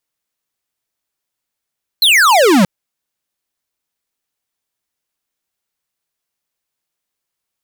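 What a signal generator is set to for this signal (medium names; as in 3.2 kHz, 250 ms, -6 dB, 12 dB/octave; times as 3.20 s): laser zap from 4.3 kHz, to 170 Hz, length 0.63 s square, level -9 dB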